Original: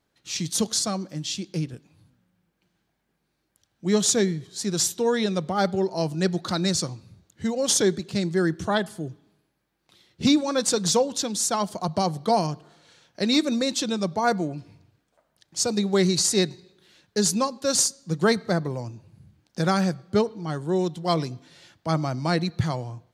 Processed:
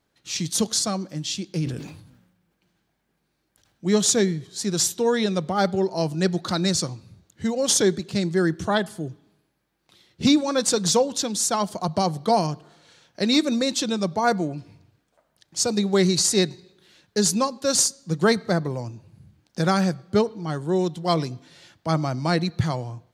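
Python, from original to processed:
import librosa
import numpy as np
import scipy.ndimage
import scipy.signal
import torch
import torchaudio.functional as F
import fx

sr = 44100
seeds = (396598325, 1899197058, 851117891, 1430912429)

y = fx.sustainer(x, sr, db_per_s=60.0, at=(1.59, 3.89))
y = y * 10.0 ** (1.5 / 20.0)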